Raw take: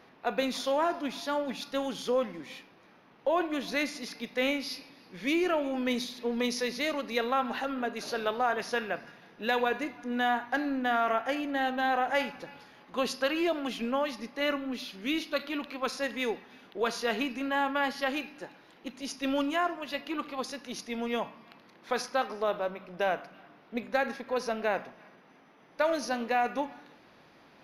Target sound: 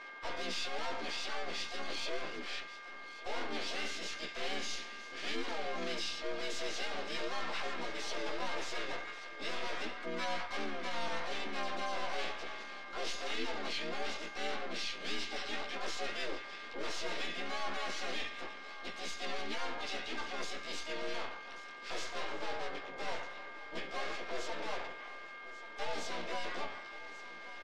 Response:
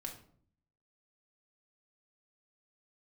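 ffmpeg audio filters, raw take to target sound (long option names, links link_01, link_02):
-filter_complex "[0:a]highpass=frequency=360:width=0.5412,highpass=frequency=360:width=1.3066,aeval=exprs='(tanh(158*val(0)+0.5)-tanh(0.5))/158':channel_layout=same,flanger=delay=15.5:depth=5.5:speed=0.11,aeval=exprs='val(0)+0.00158*sin(2*PI*1600*n/s)':channel_layout=same,lowpass=frequency=3700:width_type=q:width=1.8,asplit=4[link_01][link_02][link_03][link_04];[link_02]asetrate=33038,aresample=44100,atempo=1.33484,volume=-2dB[link_05];[link_03]asetrate=58866,aresample=44100,atempo=0.749154,volume=0dB[link_06];[link_04]asetrate=88200,aresample=44100,atempo=0.5,volume=-17dB[link_07];[link_01][link_05][link_06][link_07]amix=inputs=4:normalize=0,aecho=1:1:1136:0.168,asplit=2[link_08][link_09];[1:a]atrim=start_sample=2205[link_10];[link_09][link_10]afir=irnorm=-1:irlink=0,volume=-18dB[link_11];[link_08][link_11]amix=inputs=2:normalize=0,volume=2.5dB"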